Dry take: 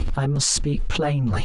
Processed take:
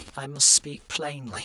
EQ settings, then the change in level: HPF 41 Hz; RIAA curve recording; -6.0 dB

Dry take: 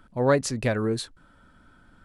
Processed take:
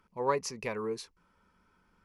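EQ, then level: low shelf 240 Hz -8 dB; dynamic EQ 1000 Hz, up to +5 dB, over -41 dBFS, Q 1.9; ripple EQ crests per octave 0.81, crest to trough 10 dB; -9.0 dB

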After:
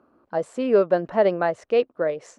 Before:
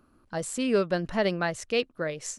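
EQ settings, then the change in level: band-pass 600 Hz, Q 1.1; +9.0 dB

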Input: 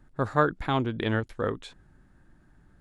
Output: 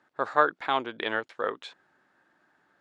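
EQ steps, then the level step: BPF 560–5100 Hz; +3.0 dB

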